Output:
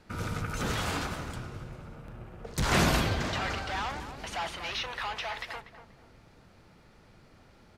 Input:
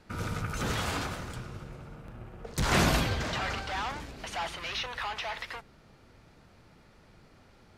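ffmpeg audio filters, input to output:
-filter_complex "[0:a]asplit=2[s0][s1];[s1]adelay=241,lowpass=f=1300:p=1,volume=0.335,asplit=2[s2][s3];[s3]adelay=241,lowpass=f=1300:p=1,volume=0.38,asplit=2[s4][s5];[s5]adelay=241,lowpass=f=1300:p=1,volume=0.38,asplit=2[s6][s7];[s7]adelay=241,lowpass=f=1300:p=1,volume=0.38[s8];[s0][s2][s4][s6][s8]amix=inputs=5:normalize=0"

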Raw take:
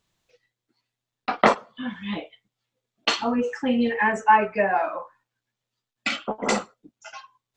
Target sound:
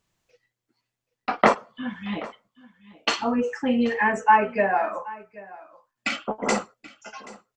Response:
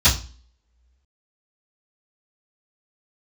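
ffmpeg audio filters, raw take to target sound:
-filter_complex "[0:a]equalizer=f=3700:w=3.1:g=-5.5,asplit=2[s0][s1];[s1]aecho=0:1:780:0.1[s2];[s0][s2]amix=inputs=2:normalize=0"

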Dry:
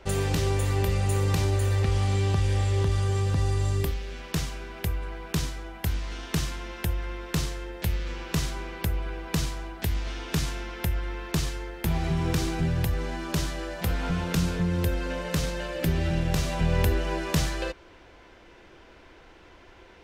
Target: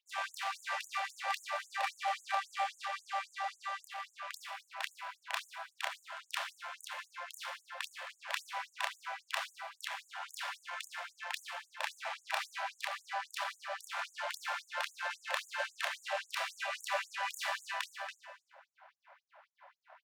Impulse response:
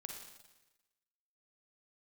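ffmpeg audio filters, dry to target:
-filter_complex "[0:a]aemphasis=mode=reproduction:type=cd,asplit=2[s0][s1];[s1]aecho=0:1:464:0.631[s2];[s0][s2]amix=inputs=2:normalize=0,adynamicsmooth=sensitivity=6.5:basefreq=920,asplit=2[s3][s4];[1:a]atrim=start_sample=2205,adelay=28[s5];[s4][s5]afir=irnorm=-1:irlink=0,volume=1.06[s6];[s3][s6]amix=inputs=2:normalize=0,afftfilt=real='re*gte(b*sr/1024,530*pow(6700/530,0.5+0.5*sin(2*PI*3.7*pts/sr)))':imag='im*gte(b*sr/1024,530*pow(6700/530,0.5+0.5*sin(2*PI*3.7*pts/sr)))':win_size=1024:overlap=0.75,volume=1.12"

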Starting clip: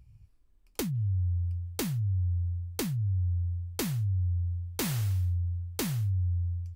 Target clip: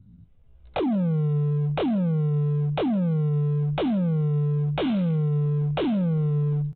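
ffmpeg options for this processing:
-filter_complex "[0:a]dynaudnorm=f=240:g=5:m=3.76,adynamicequalizer=threshold=0.0126:dfrequency=360:dqfactor=2.3:tfrequency=360:tqfactor=2.3:attack=5:release=100:ratio=0.375:range=2.5:mode=cutabove:tftype=bell,asetrate=74167,aresample=44100,atempo=0.594604,acompressor=threshold=0.0794:ratio=16,aresample=8000,asoftclip=type=hard:threshold=0.0501,aresample=44100,bandreject=f=1800:w=6.2,asplit=2[s0][s1];[s1]aecho=0:1:161:0.0668[s2];[s0][s2]amix=inputs=2:normalize=0,volume=1.68"

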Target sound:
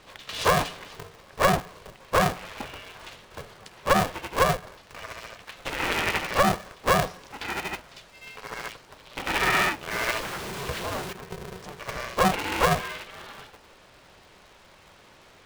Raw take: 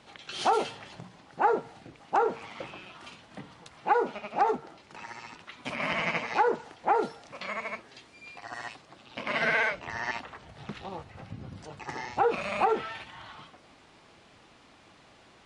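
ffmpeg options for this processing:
-filter_complex "[0:a]asettb=1/sr,asplit=3[s0][s1][s2];[s0]atrim=end=9.914[s3];[s1]atrim=start=9.91:end=11.13,asetpts=PTS-STARTPTS,afade=t=in:d=0.004:c=qsin,afade=t=out:st=1.216:d=0.004:c=qsin,aeval=exprs='val(0)+0.5*0.0188*sgn(val(0))':c=same[s4];[s2]atrim=start=11.126[s5];[s3][s4]acrossfade=d=0.004:c1=hsin:c2=qsin[s6];[s6][s5]acrossfade=d=0.004:c1=qsin:c2=hsin,aeval=exprs='val(0)*sgn(sin(2*PI*280*n/s))':c=same,volume=1.5"

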